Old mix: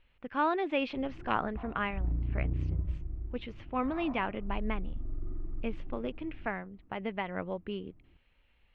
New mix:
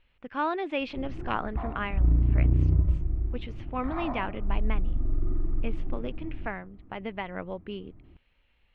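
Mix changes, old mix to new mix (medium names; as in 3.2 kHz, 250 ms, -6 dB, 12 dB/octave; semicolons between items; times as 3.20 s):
background +10.0 dB; master: remove distance through air 66 m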